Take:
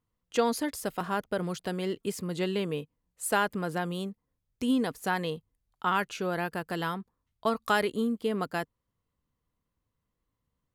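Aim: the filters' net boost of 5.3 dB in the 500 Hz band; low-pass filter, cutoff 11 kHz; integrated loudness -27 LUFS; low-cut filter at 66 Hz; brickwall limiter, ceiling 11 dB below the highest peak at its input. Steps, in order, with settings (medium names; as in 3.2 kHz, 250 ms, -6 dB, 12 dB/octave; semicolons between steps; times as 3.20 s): high-pass 66 Hz; low-pass 11 kHz; peaking EQ 500 Hz +6.5 dB; trim +4 dB; peak limiter -15.5 dBFS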